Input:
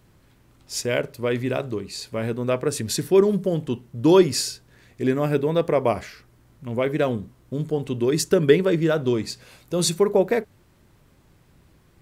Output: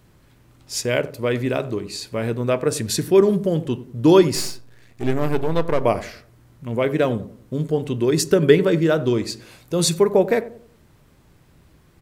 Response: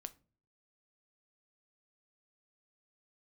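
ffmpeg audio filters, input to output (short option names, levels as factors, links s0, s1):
-filter_complex "[0:a]asettb=1/sr,asplit=3[s0][s1][s2];[s0]atrim=end=4.354[s3];[s1]atrim=start=4.35:end=5.81,asetpts=PTS-STARTPTS,afade=t=in:d=0.004:c=qsin,afade=t=out:st=1.456:d=0.004:c=qsin,aeval=exprs='if(lt(val(0),0),0.251*val(0),val(0))':c=same[s4];[s2]atrim=start=5.806[s5];[s3][s4]acrossfade=d=0.004:c1=hsin:c2=qsin[s6];[s6][s5]acrossfade=d=0.004:c1=qsin:c2=hsin,asplit=2[s7][s8];[s8]adelay=92,lowpass=f=820:p=1,volume=0.2,asplit=2[s9][s10];[s10]adelay=92,lowpass=f=820:p=1,volume=0.42,asplit=2[s11][s12];[s12]adelay=92,lowpass=f=820:p=1,volume=0.42,asplit=2[s13][s14];[s14]adelay=92,lowpass=f=820:p=1,volume=0.42[s15];[s7][s9][s11][s13][s15]amix=inputs=5:normalize=0,asplit=2[s16][s17];[1:a]atrim=start_sample=2205[s18];[s17][s18]afir=irnorm=-1:irlink=0,volume=1.19[s19];[s16][s19]amix=inputs=2:normalize=0,volume=0.794"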